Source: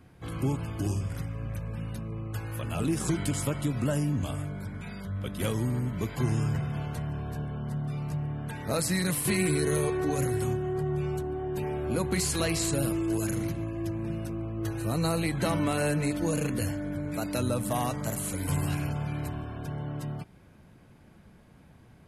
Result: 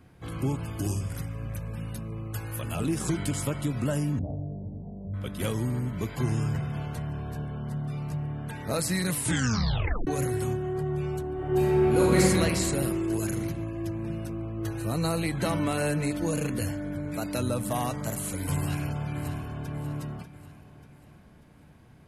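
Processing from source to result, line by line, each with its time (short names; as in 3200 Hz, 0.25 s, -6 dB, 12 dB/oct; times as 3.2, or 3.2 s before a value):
0.65–2.76 high shelf 7200 Hz +9.5 dB
4.19–5.14 steep low-pass 750 Hz 48 dB/oct
9.16 tape stop 0.91 s
11.34–12.18 reverb throw, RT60 2.4 s, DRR -7 dB
18.56–19.68 echo throw 0.59 s, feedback 45%, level -10 dB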